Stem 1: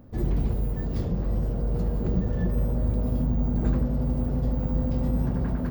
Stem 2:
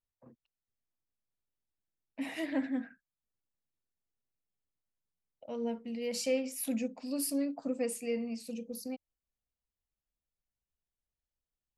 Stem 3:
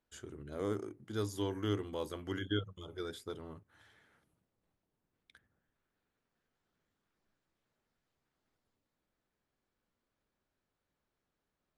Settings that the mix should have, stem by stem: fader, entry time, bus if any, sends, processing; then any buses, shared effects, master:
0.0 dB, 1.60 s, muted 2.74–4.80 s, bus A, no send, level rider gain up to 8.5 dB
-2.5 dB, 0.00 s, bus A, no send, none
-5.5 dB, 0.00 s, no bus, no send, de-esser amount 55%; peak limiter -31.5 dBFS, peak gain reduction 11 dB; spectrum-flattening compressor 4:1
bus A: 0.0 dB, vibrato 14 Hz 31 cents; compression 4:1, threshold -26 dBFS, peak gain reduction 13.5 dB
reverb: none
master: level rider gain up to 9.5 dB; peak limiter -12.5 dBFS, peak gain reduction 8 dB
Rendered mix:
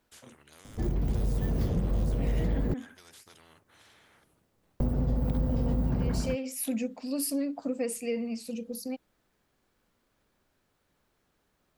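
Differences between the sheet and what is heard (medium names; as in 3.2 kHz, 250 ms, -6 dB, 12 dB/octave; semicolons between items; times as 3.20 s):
stem 1: entry 1.60 s -> 0.65 s; stem 2 -2.5 dB -> +4.0 dB; master: missing level rider gain up to 9.5 dB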